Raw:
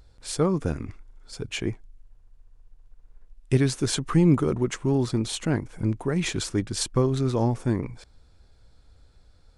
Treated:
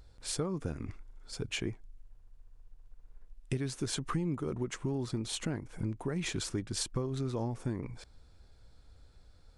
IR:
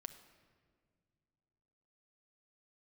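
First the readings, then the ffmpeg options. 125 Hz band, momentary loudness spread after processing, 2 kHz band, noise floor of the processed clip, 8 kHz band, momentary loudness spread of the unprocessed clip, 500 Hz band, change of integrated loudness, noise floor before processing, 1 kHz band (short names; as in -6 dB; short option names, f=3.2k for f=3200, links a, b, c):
-11.0 dB, 9 LU, -8.0 dB, -59 dBFS, -6.5 dB, 12 LU, -11.5 dB, -11.0 dB, -57 dBFS, -10.0 dB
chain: -af "acompressor=threshold=-29dB:ratio=5,volume=-2.5dB"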